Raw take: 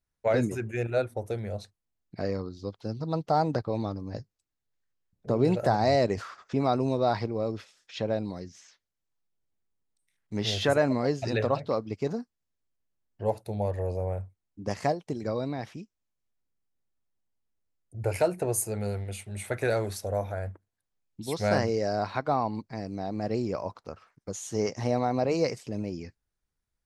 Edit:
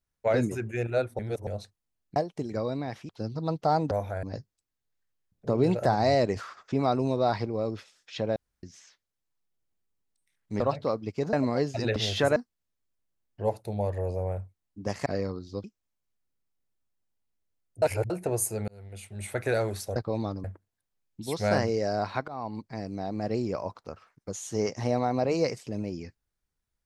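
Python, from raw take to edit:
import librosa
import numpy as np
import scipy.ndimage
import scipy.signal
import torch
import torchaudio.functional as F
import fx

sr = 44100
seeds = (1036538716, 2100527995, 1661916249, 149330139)

y = fx.edit(x, sr, fx.reverse_span(start_s=1.19, length_s=0.28),
    fx.swap(start_s=2.16, length_s=0.58, other_s=14.87, other_length_s=0.93),
    fx.swap(start_s=3.56, length_s=0.48, other_s=20.12, other_length_s=0.32),
    fx.room_tone_fill(start_s=8.17, length_s=0.27),
    fx.swap(start_s=10.41, length_s=0.4, other_s=11.44, other_length_s=0.73),
    fx.reverse_span(start_s=17.98, length_s=0.28),
    fx.fade_in_span(start_s=18.84, length_s=0.57),
    fx.fade_in_from(start_s=22.28, length_s=0.56, curve='qsin', floor_db=-20.5), tone=tone)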